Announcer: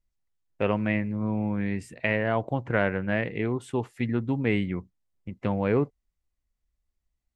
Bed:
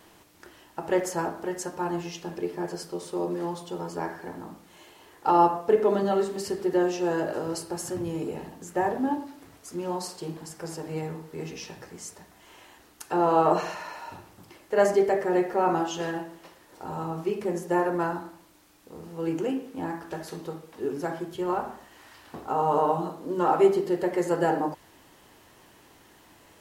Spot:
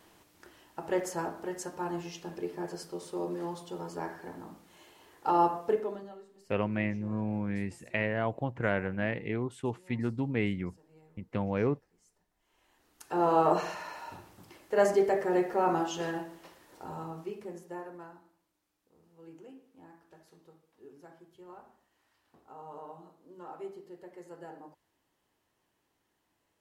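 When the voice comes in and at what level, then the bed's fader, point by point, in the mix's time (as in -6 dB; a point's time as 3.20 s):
5.90 s, -5.0 dB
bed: 5.69 s -5.5 dB
6.23 s -27.5 dB
12.30 s -27.5 dB
13.23 s -3.5 dB
16.69 s -3.5 dB
18.20 s -22.5 dB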